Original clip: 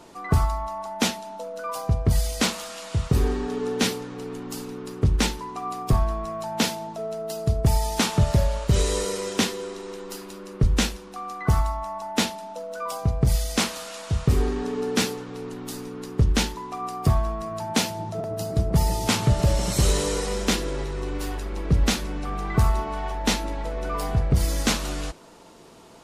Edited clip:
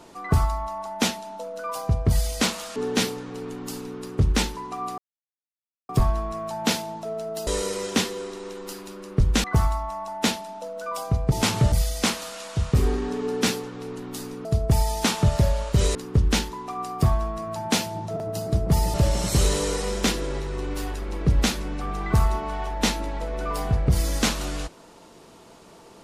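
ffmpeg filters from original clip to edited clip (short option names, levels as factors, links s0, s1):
-filter_complex "[0:a]asplit=10[s0][s1][s2][s3][s4][s5][s6][s7][s8][s9];[s0]atrim=end=2.762[s10];[s1]atrim=start=3.598:end=5.82,asetpts=PTS-STARTPTS,afade=t=out:st=2.218:d=0.004:c=hsin,apad=pad_dur=0.91[s11];[s2]atrim=start=5.82:end=7.402,asetpts=PTS-STARTPTS,afade=t=in:d=0.004:c=hsin[s12];[s3]atrim=start=8.898:end=10.872[s13];[s4]atrim=start=11.378:end=13.262[s14];[s5]atrim=start=18.978:end=19.382[s15];[s6]atrim=start=13.258:end=15.992[s16];[s7]atrim=start=7.398:end=8.902[s17];[s8]atrim=start=15.988:end=18.982[s18];[s9]atrim=start=19.378[s19];[s11][s12]concat=n=2:v=0:a=1[s20];[s10][s20]acrossfade=d=0.004:c1=hsin:c2=hsin[s21];[s21][s13]acrossfade=d=0.004:c1=hsin:c2=hsin[s22];[s22][s14]acrossfade=d=0.004:c1=hsin:c2=hsin[s23];[s23][s15]acrossfade=d=0.004:c1=hsin:c2=hsin[s24];[s24][s16]acrossfade=d=0.004:c1=hsin:c2=hsin[s25];[s25][s17]acrossfade=d=0.004:c1=hsin:c2=hsin[s26];[s26][s18]acrossfade=d=0.004:c1=hsin:c2=hsin[s27];[s27][s19]acrossfade=d=0.004:c1=hsin:c2=hsin"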